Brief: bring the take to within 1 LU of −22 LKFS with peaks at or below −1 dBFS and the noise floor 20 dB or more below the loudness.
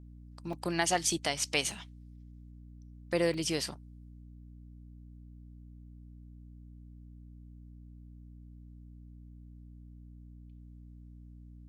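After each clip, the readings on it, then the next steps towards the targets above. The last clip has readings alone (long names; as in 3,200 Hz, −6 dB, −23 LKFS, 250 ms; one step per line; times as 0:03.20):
number of dropouts 4; longest dropout 2.5 ms; mains hum 60 Hz; hum harmonics up to 300 Hz; level of the hum −48 dBFS; integrated loudness −32.0 LKFS; sample peak −13.0 dBFS; target loudness −22.0 LKFS
→ repair the gap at 0:00.53/0:01.10/0:01.71/0:03.34, 2.5 ms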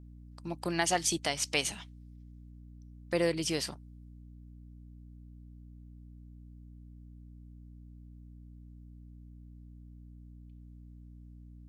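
number of dropouts 0; mains hum 60 Hz; hum harmonics up to 300 Hz; level of the hum −48 dBFS
→ mains-hum notches 60/120/180/240/300 Hz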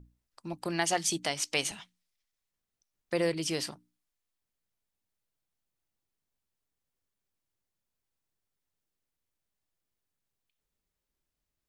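mains hum none found; integrated loudness −31.5 LKFS; sample peak −13.0 dBFS; target loudness −22.0 LKFS
→ level +9.5 dB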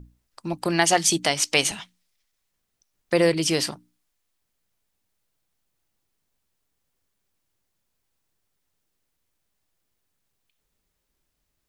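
integrated loudness −22.0 LKFS; sample peak −3.5 dBFS; background noise floor −77 dBFS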